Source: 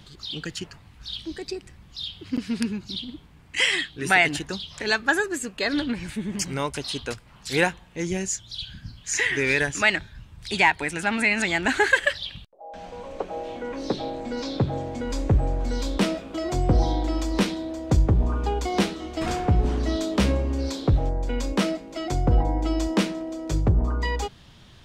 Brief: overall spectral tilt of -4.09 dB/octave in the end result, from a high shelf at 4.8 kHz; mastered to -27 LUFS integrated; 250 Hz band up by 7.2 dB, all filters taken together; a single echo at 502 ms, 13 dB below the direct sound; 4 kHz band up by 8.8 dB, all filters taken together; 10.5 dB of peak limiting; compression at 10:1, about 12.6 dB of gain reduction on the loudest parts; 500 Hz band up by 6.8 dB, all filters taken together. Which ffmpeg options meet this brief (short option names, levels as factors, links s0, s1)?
-af "equalizer=f=250:t=o:g=7.5,equalizer=f=500:t=o:g=6,equalizer=f=4000:t=o:g=9,highshelf=f=4800:g=4.5,acompressor=threshold=0.0631:ratio=10,alimiter=limit=0.0891:level=0:latency=1,aecho=1:1:502:0.224,volume=1.5"